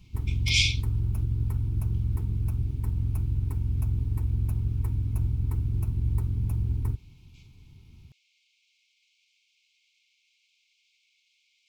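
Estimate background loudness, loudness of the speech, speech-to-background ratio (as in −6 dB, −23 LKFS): −29.0 LKFS, −26.0 LKFS, 3.0 dB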